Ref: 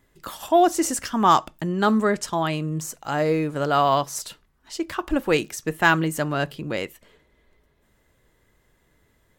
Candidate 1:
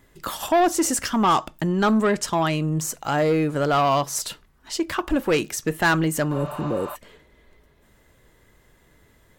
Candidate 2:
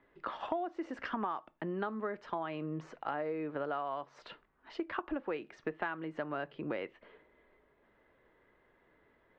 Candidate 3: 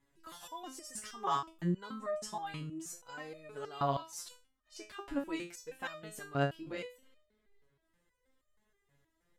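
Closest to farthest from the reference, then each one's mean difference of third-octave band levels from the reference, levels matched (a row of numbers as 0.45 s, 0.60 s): 1, 3, 2; 3.5 dB, 6.5 dB, 8.5 dB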